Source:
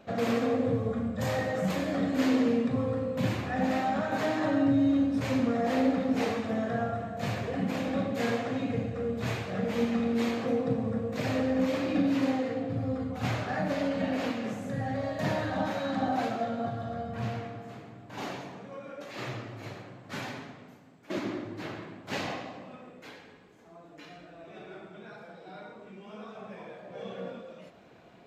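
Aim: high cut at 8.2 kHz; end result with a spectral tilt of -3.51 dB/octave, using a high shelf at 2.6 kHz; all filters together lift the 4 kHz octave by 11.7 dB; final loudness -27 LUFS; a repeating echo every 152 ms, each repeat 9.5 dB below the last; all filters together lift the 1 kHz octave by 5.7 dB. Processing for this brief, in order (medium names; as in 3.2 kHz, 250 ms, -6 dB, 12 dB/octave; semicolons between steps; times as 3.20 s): low-pass 8.2 kHz; peaking EQ 1 kHz +7 dB; treble shelf 2.6 kHz +7 dB; peaking EQ 4 kHz +8.5 dB; feedback delay 152 ms, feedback 33%, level -9.5 dB; trim +0.5 dB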